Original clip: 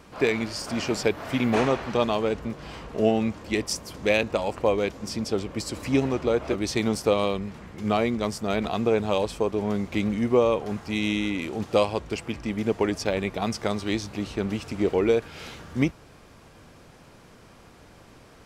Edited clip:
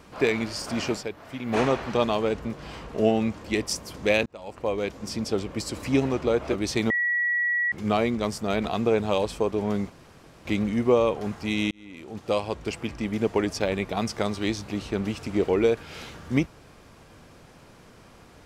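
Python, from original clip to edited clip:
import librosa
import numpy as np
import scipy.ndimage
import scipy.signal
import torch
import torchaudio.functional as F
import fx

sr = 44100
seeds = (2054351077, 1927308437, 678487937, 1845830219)

y = fx.edit(x, sr, fx.fade_down_up(start_s=0.89, length_s=0.71, db=-10.0, fade_s=0.15),
    fx.fade_in_span(start_s=4.26, length_s=1.1, curve='qsin'),
    fx.bleep(start_s=6.9, length_s=0.82, hz=1930.0, db=-21.5),
    fx.insert_room_tone(at_s=9.9, length_s=0.55),
    fx.fade_in_span(start_s=11.16, length_s=1.01), tone=tone)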